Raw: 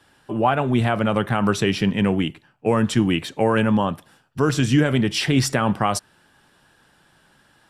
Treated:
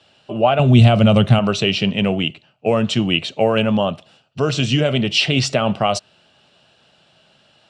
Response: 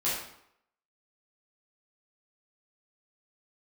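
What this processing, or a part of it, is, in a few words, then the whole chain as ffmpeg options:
car door speaker: -filter_complex "[0:a]asettb=1/sr,asplit=3[link_01][link_02][link_03];[link_01]atrim=end=0.594[link_04];[link_02]atrim=start=0.59:end=1.39,asetpts=PTS-STARTPTS,afade=type=in:duration=0.004:curve=qsin,afade=type=out:start_time=0.796:duration=0.004:curve=qsin,bass=frequency=250:gain=13,treble=frequency=4000:gain=9[link_05];[link_03]atrim=start=1.386[link_06];[link_04][link_05]acrossfade=duration=0.004:curve1=hsin:curve2=qsin[link_07];[link_07][link_06]acrossfade=duration=0.004:curve1=qsin:curve2=hsin,highpass=83,equalizer=frequency=300:width_type=q:width=4:gain=-6,equalizer=frequency=630:width_type=q:width=4:gain=9,equalizer=frequency=960:width_type=q:width=4:gain=-6,equalizer=frequency=1700:width_type=q:width=4:gain=-9,equalizer=frequency=2800:width_type=q:width=4:gain=10,equalizer=frequency=4100:width_type=q:width=4:gain=6,lowpass=frequency=7300:width=0.5412,lowpass=frequency=7300:width=1.3066,volume=1.5dB"

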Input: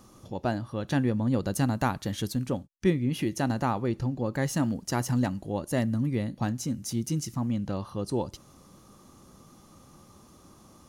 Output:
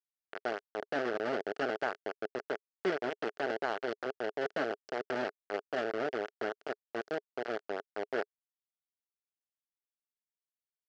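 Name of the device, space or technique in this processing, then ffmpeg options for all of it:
hand-held game console: -af "acrusher=bits=3:mix=0:aa=0.000001,highpass=410,equalizer=frequency=420:width_type=q:width=4:gain=9,equalizer=frequency=650:width_type=q:width=4:gain=5,equalizer=frequency=1000:width_type=q:width=4:gain=-9,equalizer=frequency=1500:width_type=q:width=4:gain=6,equalizer=frequency=2400:width_type=q:width=4:gain=-6,equalizer=frequency=3700:width_type=q:width=4:gain=-10,lowpass=frequency=4100:width=0.5412,lowpass=frequency=4100:width=1.3066,volume=-6.5dB"

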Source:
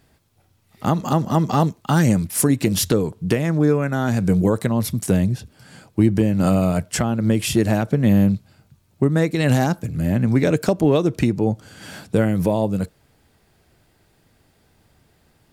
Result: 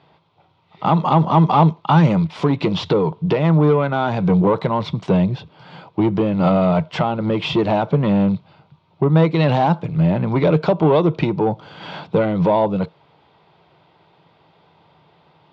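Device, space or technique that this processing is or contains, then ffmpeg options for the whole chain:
overdrive pedal into a guitar cabinet: -filter_complex "[0:a]asplit=2[link_01][link_02];[link_02]highpass=frequency=720:poles=1,volume=17dB,asoftclip=type=tanh:threshold=-6dB[link_03];[link_01][link_03]amix=inputs=2:normalize=0,lowpass=frequency=1500:poles=1,volume=-6dB,highpass=91,equalizer=frequency=160:width_type=q:width=4:gain=10,equalizer=frequency=240:width_type=q:width=4:gain=-8,equalizer=frequency=950:width_type=q:width=4:gain=8,equalizer=frequency=1700:width_type=q:width=4:gain=-10,equalizer=frequency=3500:width_type=q:width=4:gain=5,lowpass=frequency=4200:width=0.5412,lowpass=frequency=4200:width=1.3066,asettb=1/sr,asplit=3[link_04][link_05][link_06];[link_04]atrim=end=10.464[link_07];[link_05]atrim=start=10.46:end=11.18,asetpts=PTS-STARTPTS,afade=type=in:duration=0.004:curve=qsin,afade=type=out:start_time=0.716:duration=0.004:curve=qsin,lowpass=7500[link_08];[link_06]atrim=start=11.176[link_09];[link_07][link_08]acrossfade=duration=0.004:curve1=hsin:curve2=qsin[link_10];[link_10][link_09]acrossfade=duration=0.004:curve1=qsin:curve2=hsin"

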